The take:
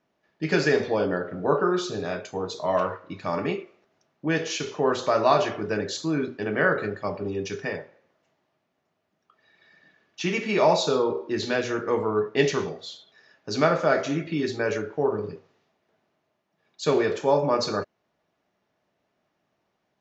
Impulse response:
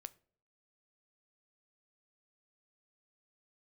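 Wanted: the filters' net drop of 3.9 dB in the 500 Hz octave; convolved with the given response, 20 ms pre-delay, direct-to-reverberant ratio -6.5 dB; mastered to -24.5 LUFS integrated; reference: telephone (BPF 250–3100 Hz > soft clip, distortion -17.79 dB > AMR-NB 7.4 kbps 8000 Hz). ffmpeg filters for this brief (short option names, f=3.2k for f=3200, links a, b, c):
-filter_complex "[0:a]equalizer=f=500:t=o:g=-4.5,asplit=2[a][b];[1:a]atrim=start_sample=2205,adelay=20[c];[b][c]afir=irnorm=-1:irlink=0,volume=12dB[d];[a][d]amix=inputs=2:normalize=0,highpass=250,lowpass=3.1k,asoftclip=threshold=-9dB,volume=-0.5dB" -ar 8000 -c:a libopencore_amrnb -b:a 7400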